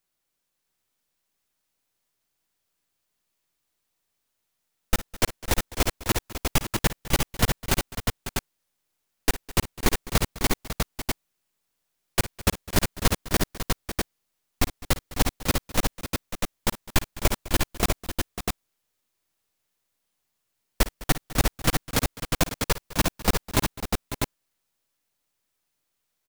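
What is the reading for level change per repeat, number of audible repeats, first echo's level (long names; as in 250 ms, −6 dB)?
repeats not evenly spaced, 4, −15.5 dB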